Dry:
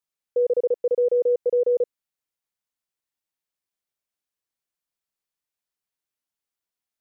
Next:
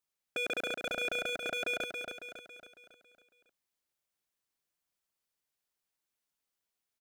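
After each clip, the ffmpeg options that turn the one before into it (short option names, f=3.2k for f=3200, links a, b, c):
-af "aeval=exprs='0.0398*(abs(mod(val(0)/0.0398+3,4)-2)-1)':c=same,aecho=1:1:276|552|828|1104|1380|1656:0.501|0.246|0.12|0.059|0.0289|0.0142"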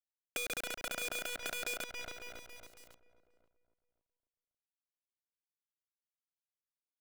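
-filter_complex "[0:a]acrusher=bits=6:dc=4:mix=0:aa=0.000001,asplit=2[a][b];[b]adelay=534,lowpass=f=1.1k:p=1,volume=-16dB,asplit=2[c][d];[d]adelay=534,lowpass=f=1.1k:p=1,volume=0.35,asplit=2[e][f];[f]adelay=534,lowpass=f=1.1k:p=1,volume=0.35[g];[a][c][e][g]amix=inputs=4:normalize=0,acrossover=split=880|5400[h][i][j];[h]acompressor=threshold=-46dB:ratio=4[k];[i]acompressor=threshold=-40dB:ratio=4[l];[j]acompressor=threshold=-43dB:ratio=4[m];[k][l][m]amix=inputs=3:normalize=0,volume=1dB"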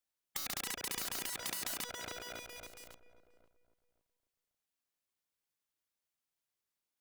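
-af "afftfilt=real='re*lt(hypot(re,im),0.0178)':imag='im*lt(hypot(re,im),0.0178)':win_size=1024:overlap=0.75,volume=5.5dB"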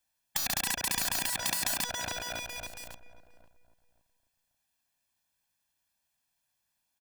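-af "aecho=1:1:1.2:0.64,volume=7.5dB"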